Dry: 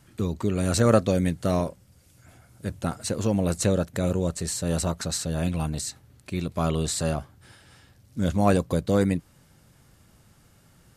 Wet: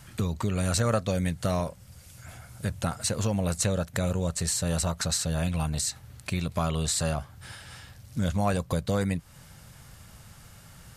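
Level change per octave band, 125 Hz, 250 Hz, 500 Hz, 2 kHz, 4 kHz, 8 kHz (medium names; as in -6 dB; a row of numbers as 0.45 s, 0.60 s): -1.5 dB, -5.0 dB, -5.5 dB, 0.0 dB, +1.5 dB, +1.5 dB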